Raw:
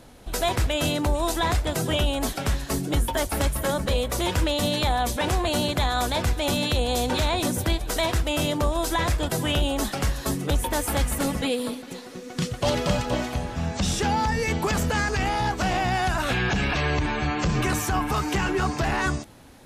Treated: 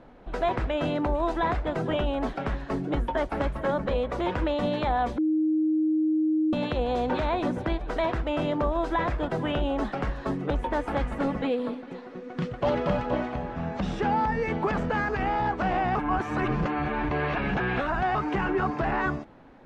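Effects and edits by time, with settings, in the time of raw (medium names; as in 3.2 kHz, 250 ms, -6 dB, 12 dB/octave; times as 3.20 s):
5.18–6.53 s: bleep 312 Hz -20 dBFS
15.95–18.15 s: reverse
whole clip: low-pass 1.7 kHz 12 dB/octave; peaking EQ 82 Hz -11 dB 1.2 oct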